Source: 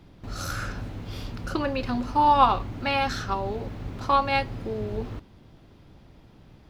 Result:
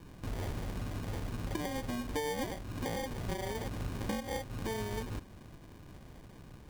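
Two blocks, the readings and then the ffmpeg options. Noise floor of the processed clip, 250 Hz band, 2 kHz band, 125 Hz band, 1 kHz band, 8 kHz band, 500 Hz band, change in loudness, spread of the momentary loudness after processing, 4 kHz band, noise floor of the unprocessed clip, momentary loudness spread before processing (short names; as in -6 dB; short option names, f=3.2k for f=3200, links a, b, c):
-53 dBFS, -7.0 dB, -11.0 dB, -5.0 dB, -19.5 dB, n/a, -8.0 dB, -12.0 dB, 17 LU, -10.0 dB, -53 dBFS, 16 LU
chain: -af "acompressor=threshold=-33dB:ratio=10,acrusher=samples=33:mix=1:aa=0.000001"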